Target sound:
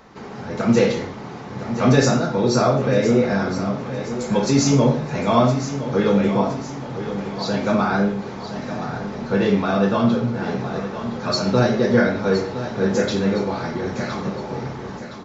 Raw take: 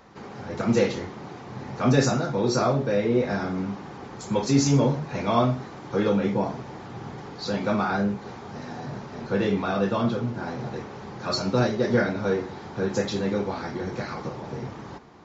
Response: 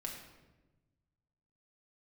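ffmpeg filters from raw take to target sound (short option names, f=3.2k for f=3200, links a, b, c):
-filter_complex "[0:a]aecho=1:1:1015|2030|3045|4060|5075:0.282|0.124|0.0546|0.024|0.0106,asplit=2[a][b];[1:a]atrim=start_sample=2205,atrim=end_sample=6174[c];[b][c]afir=irnorm=-1:irlink=0,volume=2.5dB[d];[a][d]amix=inputs=2:normalize=0,volume=-1dB"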